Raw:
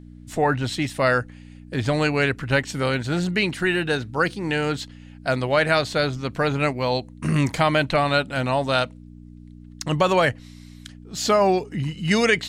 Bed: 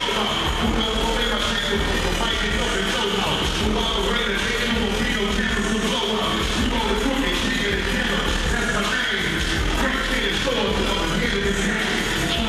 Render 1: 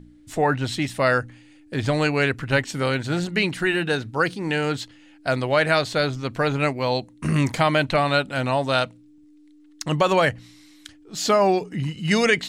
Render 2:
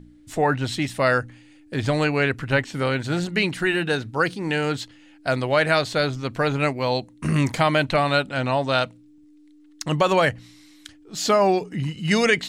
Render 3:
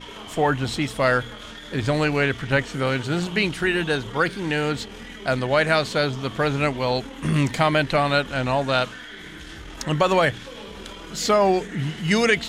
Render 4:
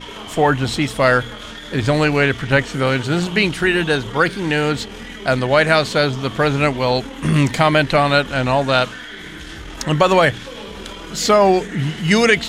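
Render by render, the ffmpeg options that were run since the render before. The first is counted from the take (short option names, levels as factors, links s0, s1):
-af "bandreject=f=60:t=h:w=4,bandreject=f=120:t=h:w=4,bandreject=f=180:t=h:w=4,bandreject=f=240:t=h:w=4"
-filter_complex "[0:a]asettb=1/sr,asplit=3[s0][s1][s2];[s0]atrim=end=2.044[s3];[s1]atrim=start=2.04:end=3.02,asetpts=PTS-STARTPTS,afade=t=in:d=0.004:c=qsin,afade=t=out:st=0.976:d=0.004:c=qsin,acrossover=split=3800[s4][s5];[s5]acompressor=threshold=0.00891:ratio=4:attack=1:release=60[s6];[s4][s6]amix=inputs=2:normalize=0[s7];[s2]atrim=start=3.016[s8];[s3][s7]acrossfade=d=0.004:c1=hsin:c2=qsin[s9];[s9][s8]acrossfade=d=0.004:c1=qsin:c2=hsin,asettb=1/sr,asplit=3[s10][s11][s12];[s10]atrim=end=8.294[s13];[s11]atrim=start=8.29:end=8.83,asetpts=PTS-STARTPTS,afade=t=in:d=0.004:c=qsin,afade=t=out:st=0.536:d=0.004:c=qsin,lowpass=7100[s14];[s12]atrim=start=8.826[s15];[s13][s14]acrossfade=d=0.004:c1=hsin:c2=qsin[s16];[s16][s15]acrossfade=d=0.004:c1=qsin:c2=hsin"
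-filter_complex "[1:a]volume=0.141[s0];[0:a][s0]amix=inputs=2:normalize=0"
-af "volume=1.88,alimiter=limit=0.891:level=0:latency=1"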